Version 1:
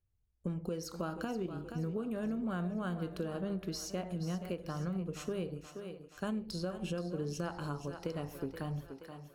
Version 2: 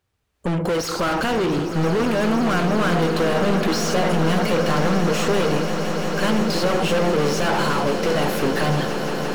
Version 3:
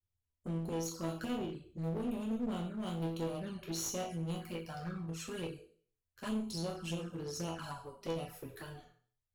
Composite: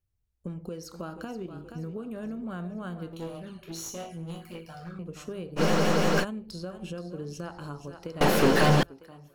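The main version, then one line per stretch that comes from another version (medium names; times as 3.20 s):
1
3.13–4.99 s: from 3
5.59–6.22 s: from 2, crossfade 0.06 s
8.21–8.83 s: from 2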